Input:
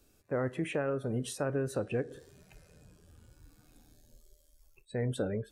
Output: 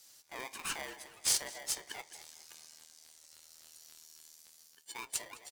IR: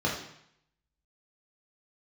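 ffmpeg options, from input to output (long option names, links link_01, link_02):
-filter_complex "[0:a]highpass=frequency=2000:width_type=q:width=2.6,highshelf=frequency=4100:width_type=q:width=3:gain=10,afreqshift=-230,asplit=2[link_01][link_02];[link_02]adelay=208,lowpass=frequency=3200:poles=1,volume=-14dB,asplit=2[link_03][link_04];[link_04]adelay=208,lowpass=frequency=3200:poles=1,volume=0.44,asplit=2[link_05][link_06];[link_06]adelay=208,lowpass=frequency=3200:poles=1,volume=0.44,asplit=2[link_07][link_08];[link_08]adelay=208,lowpass=frequency=3200:poles=1,volume=0.44[link_09];[link_01][link_03][link_05][link_07][link_09]amix=inputs=5:normalize=0,aeval=exprs='val(0)*sgn(sin(2*PI*670*n/s))':channel_layout=same"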